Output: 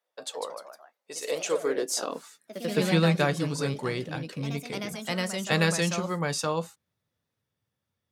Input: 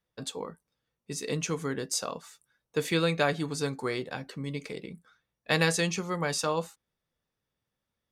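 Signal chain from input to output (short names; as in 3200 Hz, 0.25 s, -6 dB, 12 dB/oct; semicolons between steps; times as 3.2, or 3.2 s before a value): high-pass sweep 600 Hz -> 96 Hz, 1.23–3.55; echoes that change speed 0.18 s, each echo +2 st, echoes 3, each echo -6 dB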